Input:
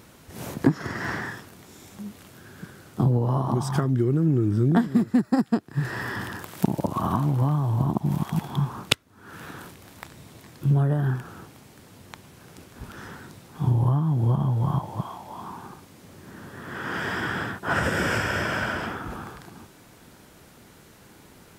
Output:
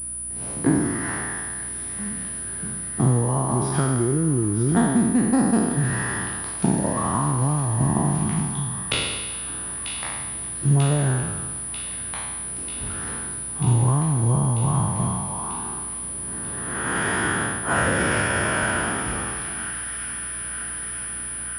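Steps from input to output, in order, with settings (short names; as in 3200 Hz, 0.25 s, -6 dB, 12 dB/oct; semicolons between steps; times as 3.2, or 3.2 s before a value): spectral trails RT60 1.32 s; AGC gain up to 9 dB; hum 60 Hz, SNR 21 dB; thin delay 0.941 s, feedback 72%, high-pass 1700 Hz, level -9 dB; pulse-width modulation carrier 9800 Hz; gain -6.5 dB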